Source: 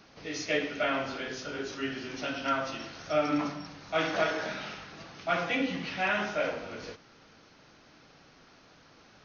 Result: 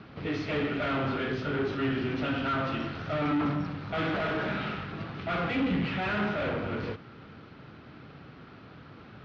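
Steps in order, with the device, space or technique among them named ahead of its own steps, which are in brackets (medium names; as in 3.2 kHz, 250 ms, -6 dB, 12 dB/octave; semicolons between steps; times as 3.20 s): guitar amplifier (valve stage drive 38 dB, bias 0.65; tone controls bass +15 dB, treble -3 dB; cabinet simulation 91–3800 Hz, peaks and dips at 170 Hz -3 dB, 400 Hz +4 dB, 1.3 kHz +5 dB); trim +7.5 dB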